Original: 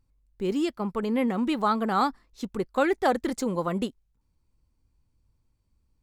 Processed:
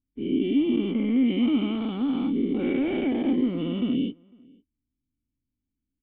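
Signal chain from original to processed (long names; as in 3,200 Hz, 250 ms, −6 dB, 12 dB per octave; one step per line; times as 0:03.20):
every bin's largest magnitude spread in time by 480 ms
low-shelf EQ 160 Hz −6.5 dB
notch filter 2,500 Hz, Q 12
leveller curve on the samples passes 2
formant resonators in series i
slap from a distant wall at 86 metres, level −28 dB
level −1 dB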